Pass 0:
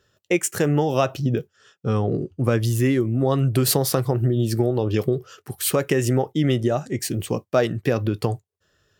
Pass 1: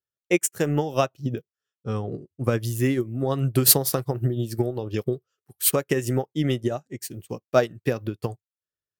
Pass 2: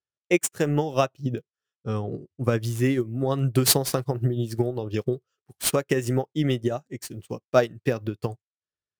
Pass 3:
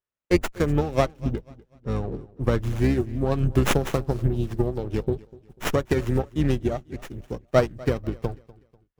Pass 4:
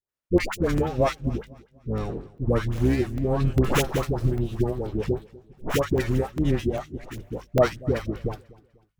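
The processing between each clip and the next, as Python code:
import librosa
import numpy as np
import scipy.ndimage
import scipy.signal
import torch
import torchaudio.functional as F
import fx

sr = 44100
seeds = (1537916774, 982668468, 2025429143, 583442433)

y1 = fx.high_shelf(x, sr, hz=9100.0, db=8.5)
y1 = fx.upward_expand(y1, sr, threshold_db=-39.0, expansion=2.5)
y1 = F.gain(torch.from_numpy(y1), 3.0).numpy()
y2 = scipy.signal.medfilt(y1, 3)
y3 = fx.octave_divider(y2, sr, octaves=2, level_db=-3.0)
y3 = fx.echo_feedback(y3, sr, ms=246, feedback_pct=36, wet_db=-21.5)
y3 = fx.running_max(y3, sr, window=9)
y4 = fx.hum_notches(y3, sr, base_hz=50, count=4)
y4 = fx.dispersion(y4, sr, late='highs', ms=92.0, hz=840.0)
y4 = fx.buffer_crackle(y4, sr, first_s=0.38, period_s=0.4, block=64, kind='zero')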